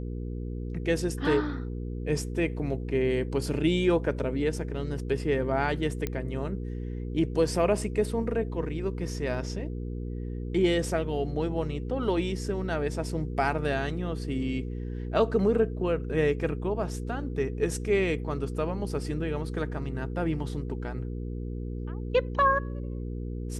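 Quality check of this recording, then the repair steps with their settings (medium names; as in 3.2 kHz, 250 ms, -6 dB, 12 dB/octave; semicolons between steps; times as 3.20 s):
hum 60 Hz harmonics 8 -34 dBFS
6.07 s: pop -16 dBFS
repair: de-click; de-hum 60 Hz, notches 8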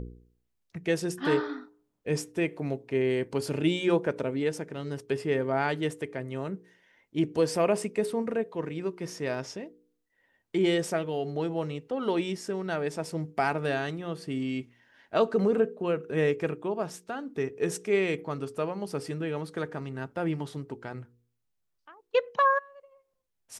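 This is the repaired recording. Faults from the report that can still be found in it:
nothing left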